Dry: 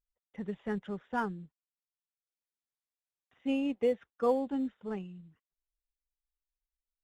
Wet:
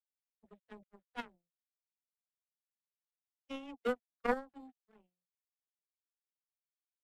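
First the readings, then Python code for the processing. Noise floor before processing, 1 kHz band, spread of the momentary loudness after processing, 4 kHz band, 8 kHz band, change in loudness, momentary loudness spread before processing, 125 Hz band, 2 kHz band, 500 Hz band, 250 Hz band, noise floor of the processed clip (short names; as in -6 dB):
under -85 dBFS, -5.0 dB, 21 LU, -3.5 dB, n/a, -6.0 dB, 15 LU, under -15 dB, -1.0 dB, -8.5 dB, -12.5 dB, under -85 dBFS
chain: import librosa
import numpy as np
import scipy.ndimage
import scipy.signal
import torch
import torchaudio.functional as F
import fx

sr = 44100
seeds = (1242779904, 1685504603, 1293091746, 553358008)

y = fx.dispersion(x, sr, late='lows', ms=66.0, hz=310.0)
y = fx.power_curve(y, sr, exponent=3.0)
y = fx.am_noise(y, sr, seeds[0], hz=5.7, depth_pct=60)
y = y * 10.0 ** (8.0 / 20.0)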